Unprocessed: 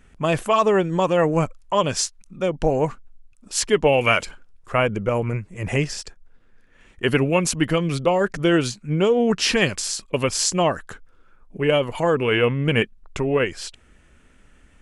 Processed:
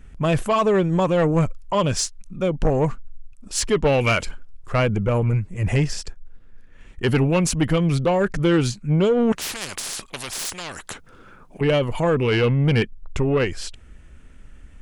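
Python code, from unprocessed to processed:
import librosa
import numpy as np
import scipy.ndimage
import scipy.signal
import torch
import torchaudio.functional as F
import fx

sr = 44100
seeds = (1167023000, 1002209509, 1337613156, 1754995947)

y = fx.low_shelf(x, sr, hz=160.0, db=11.5)
y = 10.0 ** (-11.5 / 20.0) * np.tanh(y / 10.0 ** (-11.5 / 20.0))
y = fx.spectral_comp(y, sr, ratio=4.0, at=(9.32, 11.61))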